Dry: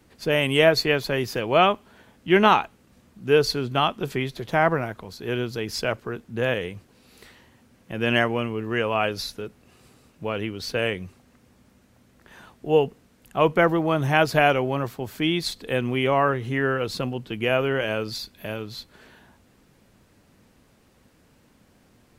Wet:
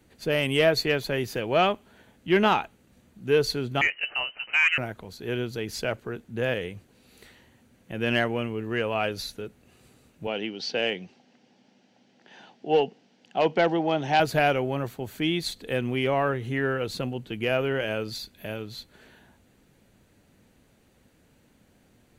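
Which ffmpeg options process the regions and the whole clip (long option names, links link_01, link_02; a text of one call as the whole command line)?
ffmpeg -i in.wav -filter_complex "[0:a]asettb=1/sr,asplit=3[link_01][link_02][link_03];[link_01]atrim=end=3.814[link_04];[link_02]atrim=start=3.81:end=4.78,asetpts=PTS-STARTPTS,afade=type=in:duration=0.004:curve=qsin,afade=type=out:start_time=0.966:duration=0.004:curve=qsin,asplit=2[link_05][link_06];[link_06]highpass=frequency=720:poles=1,volume=11dB,asoftclip=type=tanh:threshold=-5.5dB[link_07];[link_05][link_07]amix=inputs=2:normalize=0,lowpass=frequency=2000:poles=1,volume=-6dB,lowpass=frequency=2600:width_type=q:width=0.5098,lowpass=frequency=2600:width_type=q:width=0.6013,lowpass=frequency=2600:width_type=q:width=0.9,lowpass=frequency=2600:width_type=q:width=2.563,afreqshift=-3100[link_08];[link_03]atrim=start=4.776[link_09];[link_04][link_08]acrossfade=duration=0.004:curve1=hsin:curve2=qsin[link_10];[link_10][link_09]acrossfade=duration=0.004:curve1=qsin:curve2=hsin,asettb=1/sr,asplit=3[link_11][link_12][link_13];[link_11]atrim=end=10.274[link_14];[link_12]atrim=start=10.27:end=14.2,asetpts=PTS-STARTPTS,afade=type=in:duration=0.004:curve=qsin,afade=type=out:start_time=3.926:duration=0.004:curve=qsin,aeval=exprs='clip(val(0),-1,0.282)':channel_layout=same,highpass=frequency=170:width=0.5412,highpass=frequency=170:width=1.3066,equalizer=frequency=790:width_type=q:width=4:gain=8,equalizer=frequency=1200:width_type=q:width=4:gain=-6,equalizer=frequency=3000:width_type=q:width=4:gain=6,equalizer=frequency=5200:width_type=q:width=4:gain=10,lowpass=frequency=5900:width=0.5412,lowpass=frequency=5900:width=1.3066[link_15];[link_13]atrim=start=14.196[link_16];[link_14][link_15]acrossfade=duration=0.004:curve1=hsin:curve2=qsin[link_17];[link_17][link_16]acrossfade=duration=0.004:curve1=qsin:curve2=hsin,equalizer=frequency=1100:width_type=o:width=0.43:gain=-5.5,bandreject=frequency=5200:width=8.3,acontrast=41,volume=-8dB" out.wav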